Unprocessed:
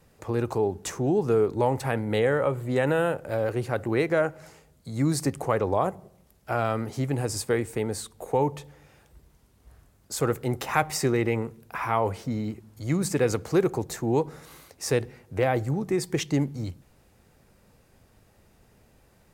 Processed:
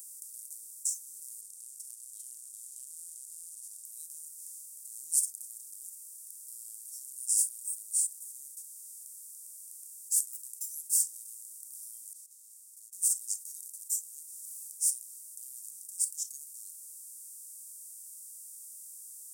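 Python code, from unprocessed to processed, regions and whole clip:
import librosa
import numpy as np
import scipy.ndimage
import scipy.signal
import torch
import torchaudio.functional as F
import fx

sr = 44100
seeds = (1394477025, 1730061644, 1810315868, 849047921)

y = fx.chain(x, sr, fx.lowpass(hz=8100.0, slope=24),
    fx.echo_single(ms=397, db=-4.0),
    fx.transformer_sat(knee_hz=980.0), at=(1.41, 3.85))
y = fx.chain(y, sr, fx.double_bandpass(hz=410.0, octaves=2.8),
    fx.over_compress(threshold_db=-49.0, ratio=-1.0), at=(12.13, 12.93))
y = fx.bin_compress(y, sr, power=0.2)
y = scipy.signal.sosfilt(scipy.signal.cheby2(4, 70, 2200.0, 'highpass', fs=sr, output='sos'), y)
y = fx.noise_reduce_blind(y, sr, reduce_db=16)
y = y * 10.0 ** (8.0 / 20.0)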